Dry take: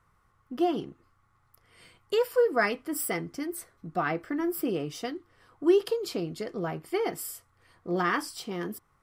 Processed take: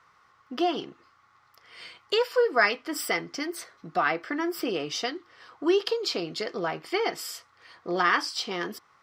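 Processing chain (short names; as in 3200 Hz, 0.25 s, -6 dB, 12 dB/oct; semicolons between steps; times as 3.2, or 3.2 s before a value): HPF 840 Hz 6 dB/oct; resonant high shelf 7300 Hz -13 dB, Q 1.5; in parallel at +1 dB: compressor, threshold -41 dBFS, peak gain reduction 17.5 dB; on the sum: gain +4.5 dB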